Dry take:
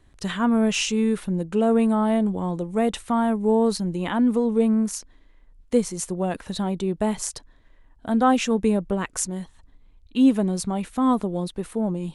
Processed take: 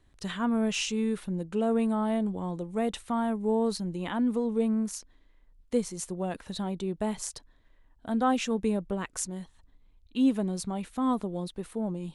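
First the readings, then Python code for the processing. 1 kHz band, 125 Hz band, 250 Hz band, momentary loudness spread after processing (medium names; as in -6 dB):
-7.0 dB, -7.0 dB, -7.0 dB, 9 LU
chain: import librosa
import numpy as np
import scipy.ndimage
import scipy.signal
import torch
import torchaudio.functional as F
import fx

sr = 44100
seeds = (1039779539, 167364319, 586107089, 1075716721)

y = fx.peak_eq(x, sr, hz=3900.0, db=2.0, octaves=0.77)
y = F.gain(torch.from_numpy(y), -7.0).numpy()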